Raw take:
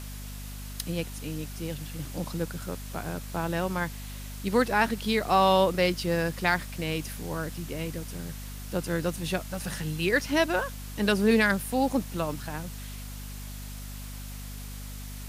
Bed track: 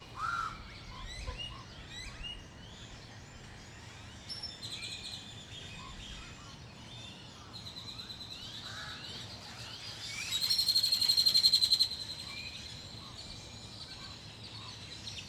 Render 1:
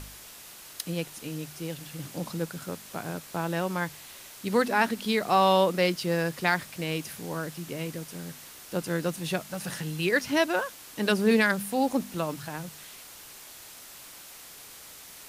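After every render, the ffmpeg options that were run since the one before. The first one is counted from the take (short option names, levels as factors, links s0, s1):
-af "bandreject=f=50:t=h:w=4,bandreject=f=100:t=h:w=4,bandreject=f=150:t=h:w=4,bandreject=f=200:t=h:w=4,bandreject=f=250:t=h:w=4"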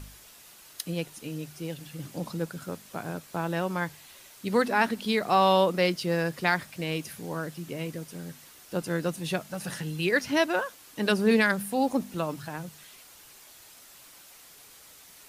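-af "afftdn=nr=6:nf=-47"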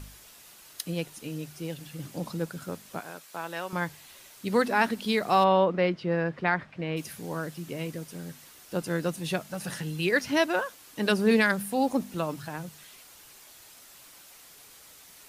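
-filter_complex "[0:a]asettb=1/sr,asplit=3[s0][s1][s2];[s0]atrim=end=3.004[s3];[s1]atrim=start=3:end=3.73,asetpts=PTS-STARTPTS,afade=t=in:d=0.004:c=qsin,afade=t=out:st=0.726:d=0.004:c=qsin,highpass=f=950:p=1[s4];[s2]atrim=start=3.726[s5];[s3][s4]acrossfade=d=0.004:c1=hsin:c2=qsin[s6];[s6][s5]acrossfade=d=0.004:c1=qsin:c2=hsin,asplit=3[s7][s8][s9];[s7]afade=t=out:st=5.43:d=0.02[s10];[s8]lowpass=2200,afade=t=in:st=5.43:d=0.02,afade=t=out:st=6.96:d=0.02[s11];[s9]afade=t=in:st=6.96:d=0.02[s12];[s10][s11][s12]amix=inputs=3:normalize=0"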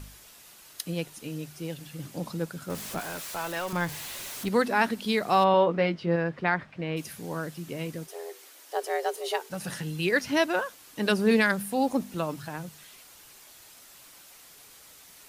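-filter_complex "[0:a]asettb=1/sr,asplit=3[s0][s1][s2];[s0]atrim=end=2.704[s3];[s1]atrim=start=2.7:end=4.49,asetpts=PTS-STARTPTS,afade=t=in:d=0.004:c=qsin,afade=t=out:st=1.786:d=0.004:c=qsin,aeval=exprs='val(0)+0.5*0.0188*sgn(val(0))':c=same[s4];[s2]atrim=start=4.486[s5];[s3][s4]acrossfade=d=0.004:c1=hsin:c2=qsin[s6];[s6][s5]acrossfade=d=0.004:c1=qsin:c2=hsin,asettb=1/sr,asplit=3[s7][s8][s9];[s7]atrim=end=5.524[s10];[s8]atrim=start=5.52:end=6.16,asetpts=PTS-STARTPTS,afade=t=in:d=0.004:c=qsin,afade=t=out:st=0.636:d=0.004:c=qsin,asplit=2[s11][s12];[s12]adelay=18,volume=0.422[s13];[s11][s13]amix=inputs=2:normalize=0,atrim=end_sample=28224[s14];[s9]atrim=start=6.156[s15];[s10][s14]acrossfade=d=0.004:c1=hsin:c2=qsin[s16];[s16][s15]acrossfade=d=0.004:c1=qsin:c2=hsin,asplit=3[s17][s18][s19];[s17]afade=t=out:st=8.06:d=0.02[s20];[s18]afreqshift=240,afade=t=in:st=8.06:d=0.02,afade=t=out:st=9.49:d=0.02[s21];[s19]afade=t=in:st=9.49:d=0.02[s22];[s20][s21][s22]amix=inputs=3:normalize=0"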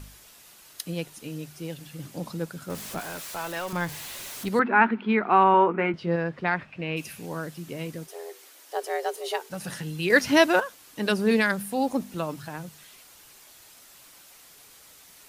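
-filter_complex "[0:a]asettb=1/sr,asplit=3[s0][s1][s2];[s0]atrim=end=4.594[s3];[s1]atrim=start=4.59:end=5.94,asetpts=PTS-STARTPTS,afade=t=in:d=0.004:c=qsin,afade=t=out:st=1.346:d=0.004:c=qsin,highpass=220,equalizer=f=220:t=q:w=4:g=8,equalizer=f=380:t=q:w=4:g=7,equalizer=f=550:t=q:w=4:g=-7,equalizer=f=920:t=q:w=4:g=7,equalizer=f=1400:t=q:w=4:g=9,equalizer=f=2400:t=q:w=4:g=6,lowpass=f=2500:w=0.5412,lowpass=f=2500:w=1.3066[s4];[s2]atrim=start=5.936[s5];[s3][s4]acrossfade=d=0.004:c1=hsin:c2=qsin[s6];[s6][s5]acrossfade=d=0.004:c1=qsin:c2=hsin,asettb=1/sr,asplit=3[s7][s8][s9];[s7]atrim=end=6.514[s10];[s8]atrim=start=6.51:end=7.26,asetpts=PTS-STARTPTS,afade=t=in:d=0.004:c=qsin,afade=t=out:st=0.746:d=0.004:c=qsin,equalizer=f=2600:t=o:w=0.22:g=12[s11];[s9]atrim=start=7.256[s12];[s10][s11]acrossfade=d=0.004:c1=hsin:c2=qsin[s13];[s13][s12]acrossfade=d=0.004:c1=qsin:c2=hsin,asplit=3[s14][s15][s16];[s14]atrim=end=10.102[s17];[s15]atrim=start=10.098:end=10.602,asetpts=PTS-STARTPTS,volume=2[s18];[s16]atrim=start=10.598[s19];[s17][s18]acrossfade=d=0.004:c1=hsin:c2=hsin[s20];[s20][s19]acrossfade=d=0.004:c1=hsin:c2=hsin"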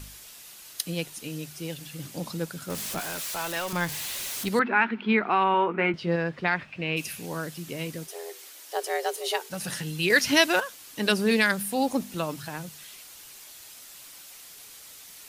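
-filter_complex "[0:a]acrossover=split=2100[s0][s1];[s0]alimiter=limit=0.178:level=0:latency=1:release=241[s2];[s1]acontrast=39[s3];[s2][s3]amix=inputs=2:normalize=0"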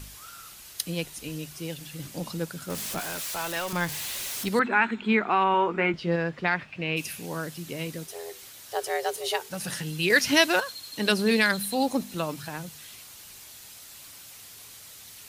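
-filter_complex "[1:a]volume=0.211[s0];[0:a][s0]amix=inputs=2:normalize=0"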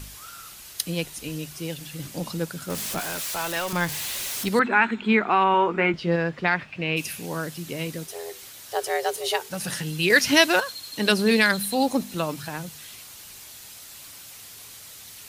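-af "volume=1.41"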